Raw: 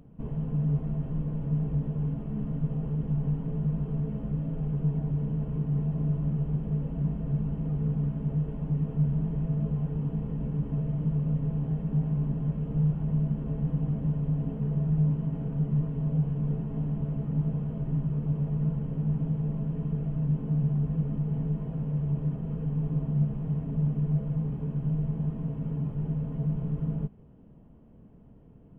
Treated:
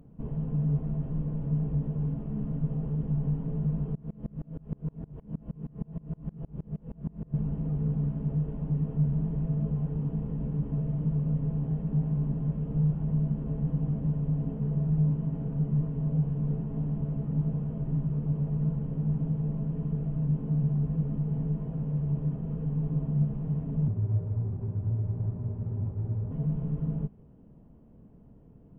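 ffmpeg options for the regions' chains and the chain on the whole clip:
-filter_complex "[0:a]asettb=1/sr,asplit=3[s0][s1][s2];[s0]atrim=end=3.954[s3];[s1]atrim=start=3.95:end=7.34,asetpts=PTS-STARTPTS,afade=t=in:d=0.004:c=qsin,afade=t=out:st=3.386:d=0.004:c=qsin,asplit=2[s4][s5];[s5]adelay=24,volume=0.708[s6];[s4][s6]amix=inputs=2:normalize=0,atrim=end_sample=149499,aeval=exprs='val(0)*pow(10,-30*if(lt(mod(-6.4*n/s,1),2*abs(-6.4)/1000),1-mod(-6.4*n/s,1)/(2*abs(-6.4)/1000),(mod(-6.4*n/s,1)-2*abs(-6.4)/1000)/(1-2*abs(-6.4)/1000))/20)':c=same[s7];[s2]atrim=start=7.336[s8];[s3][s7]acrossfade=d=0.004:c1=hsin:c2=qsin[s9];[s9][s8]acrossfade=d=0.004:c1=qsin:c2=hsin,asettb=1/sr,asplit=3[s10][s11][s12];[s10]atrim=end=23.884[s13];[s11]atrim=start=23.88:end=26.31,asetpts=PTS-STARTPTS,afade=t=in:d=0.004:c=qsin,afade=t=out:st=2.426:d=0.004:c=qsin,highpass=f=71:w=0.5412,highpass=f=71:w=1.3066,adynamicsmooth=sensitivity=5:basefreq=1300,afreqshift=-43[s14];[s12]atrim=start=26.306[s15];[s13][s14]acrossfade=d=0.004:c1=hsin:c2=qsin[s16];[s16][s15]acrossfade=d=0.004:c1=qsin:c2=hsin,lowpass=f=1200:p=1,aemphasis=mode=production:type=50fm"

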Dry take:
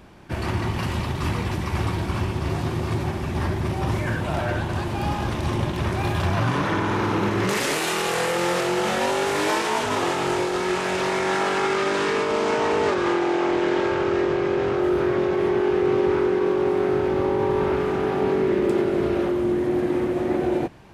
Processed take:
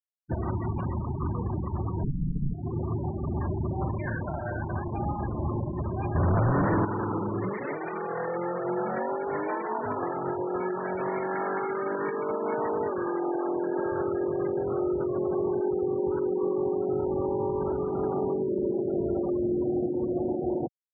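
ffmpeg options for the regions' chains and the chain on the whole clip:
-filter_complex "[0:a]asettb=1/sr,asplit=3[s0][s1][s2];[s0]atrim=end=2.034[s3];[s1]atrim=start=2.03:end=2.54,asetpts=PTS-STARTPTS,afade=t=in:d=0.004:c=qsin,afade=t=out:st=0.506:d=0.004:c=qsin,acrossover=split=190|3000[s4][s5][s6];[s5]acompressor=threshold=0.0282:ratio=4:attack=3.2:release=140:knee=2.83:detection=peak[s7];[s4][s7][s6]amix=inputs=3:normalize=0,aemphasis=mode=reproduction:type=riaa,aeval=exprs='val(0)*sin(2*PI*69*n/s)':c=same[s8];[s2]atrim=start=2.536[s9];[s3][s8]acrossfade=d=0.004:c1=hsin:c2=qsin[s10];[s10][s9]acrossfade=d=0.004:c1=qsin:c2=hsin,asettb=1/sr,asplit=3[s11][s12][s13];[s11]atrim=end=3.884[s14];[s12]atrim=start=3.88:end=4.98,asetpts=PTS-STARTPTS,afade=t=in:d=0.004:c=qsin,afade=t=out:st=1.096:d=0.004:c=qsin,equalizer=f=3200:t=o:w=2.3:g=4,aeval=exprs='sgn(val(0))*max(abs(val(0))-0.0119,0)':c=same,bandreject=f=60:t=h:w=6,bandreject=f=120:t=h:w=6,bandreject=f=180:t=h:w=6,bandreject=f=240:t=h:w=6,bandreject=f=300:t=h:w=6,bandreject=f=360:t=h:w=6[s15];[s13]atrim=start=4.976[s16];[s14][s15]acrossfade=d=0.004:c1=hsin:c2=qsin[s17];[s17][s16]acrossfade=d=0.004:c1=qsin:c2=hsin,asettb=1/sr,asplit=3[s18][s19][s20];[s18]atrim=end=6.154[s21];[s19]atrim=start=6.15:end=6.85,asetpts=PTS-STARTPTS,afade=t=in:d=0.004:c=qsin,afade=t=out:st=0.696:d=0.004:c=qsin,equalizer=f=2300:w=0.31:g=-6,aeval=exprs='0.237*sin(PI/2*2.51*val(0)/0.237)':c=same[s22];[s20]atrim=start=6.846[s23];[s21][s22]acrossfade=d=0.004:c1=hsin:c2=qsin[s24];[s24][s23]acrossfade=d=0.004:c1=qsin:c2=hsin,alimiter=limit=0.106:level=0:latency=1:release=411,lowpass=2100,afftfilt=real='re*gte(hypot(re,im),0.0447)':imag='im*gte(hypot(re,im),0.0447)':win_size=1024:overlap=0.75"

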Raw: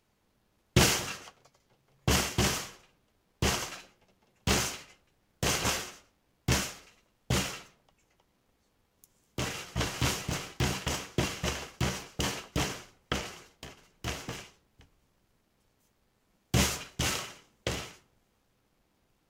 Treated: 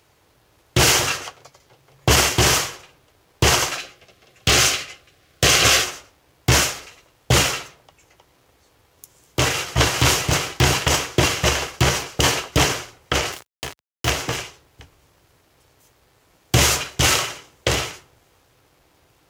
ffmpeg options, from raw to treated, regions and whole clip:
-filter_complex "[0:a]asettb=1/sr,asplit=3[s0][s1][s2];[s0]atrim=end=3.784[s3];[s1]atrim=start=3.78:end=5.85,asetpts=PTS-STARTPTS,afade=t=in:d=0.004:c=qsin,afade=t=out:st=2.066:d=0.004:c=qsin,asuperstop=centerf=910:order=8:qfactor=5.2,equalizer=f=3300:t=o:w=1.9:g=4.5[s4];[s2]atrim=start=5.846[s5];[s3][s4]acrossfade=d=0.004:c1=hsin:c2=qsin[s6];[s6][s5]acrossfade=d=0.004:c1=qsin:c2=hsin,asettb=1/sr,asplit=3[s7][s8][s9];[s7]atrim=end=13.324[s10];[s8]atrim=start=13.32:end=14.1,asetpts=PTS-STARTPTS,afade=t=in:d=0.004:c=qsin,afade=t=out:st=0.776:d=0.004:c=qsin,acrusher=bits=6:mix=0:aa=0.5,highpass=54[s11];[s9]atrim=start=14.096[s12];[s10][s11]acrossfade=d=0.004:c1=hsin:c2=qsin[s13];[s13][s12]acrossfade=d=0.004:c1=qsin:c2=hsin,highpass=56,equalizer=f=210:w=3.3:g=-15,alimiter=level_in=8.91:limit=0.891:release=50:level=0:latency=1,volume=0.668"

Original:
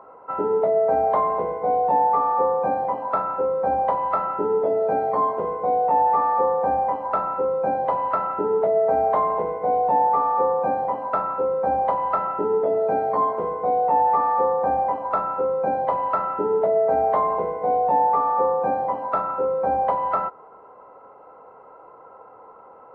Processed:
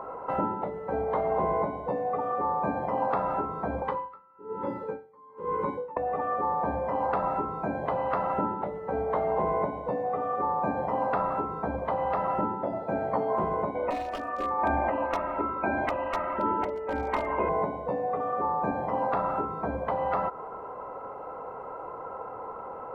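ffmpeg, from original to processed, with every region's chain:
-filter_complex "[0:a]asettb=1/sr,asplit=3[s0][s1][s2];[s0]atrim=end=3.824[s3];[s1]atrim=start=3.82:end=5.97,asetpts=PTS-STARTPTS,afade=t=in:d=0.004:c=qsin,afade=t=out:st=2.146:d=0.004:c=qsin,asuperstop=centerf=690:order=8:qfactor=2.6,lowshelf=f=190:g=-5.5,aeval=exprs='val(0)*pow(10,-40*(0.5-0.5*cos(2*PI*1.1*n/s))/20)':c=same[s4];[s2]atrim=start=5.966[s5];[s3][s4]acrossfade=d=0.004:c1=hsin:c2=qsin[s6];[s6][s5]acrossfade=d=0.004:c1=qsin:c2=hsin,asettb=1/sr,asplit=3[s7][s8][s9];[s7]atrim=end=13.754[s10];[s8]atrim=start=13.75:end=17.49,asetpts=PTS-STARTPTS,afade=t=in:d=0.004:c=qsin,afade=t=out:st=3.736:d=0.004:c=qsin,lowpass=f=2500:t=q:w=3.8,asoftclip=type=hard:threshold=0.251,aecho=1:1:3.2:0.77,atrim=end_sample=164934[s11];[s9]atrim=start=17.486[s12];[s10][s11]acrossfade=d=0.004:c1=hsin:c2=qsin[s13];[s13][s12]acrossfade=d=0.004:c1=qsin:c2=hsin,acompressor=threshold=0.0501:ratio=12,lowshelf=f=120:g=9,afftfilt=real='re*lt(hypot(re,im),0.2)':imag='im*lt(hypot(re,im),0.2)':win_size=1024:overlap=0.75,volume=2.24"

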